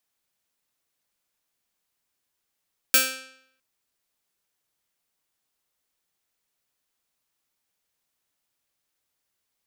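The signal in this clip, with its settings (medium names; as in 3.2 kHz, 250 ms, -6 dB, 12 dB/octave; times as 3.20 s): plucked string C4, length 0.66 s, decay 0.71 s, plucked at 0.26, bright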